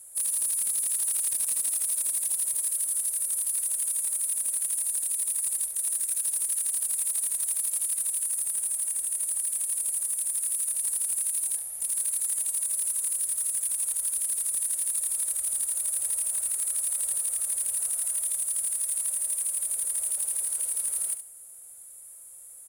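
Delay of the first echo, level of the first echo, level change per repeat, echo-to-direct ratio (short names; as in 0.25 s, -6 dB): 70 ms, -10.0 dB, -15.5 dB, -10.0 dB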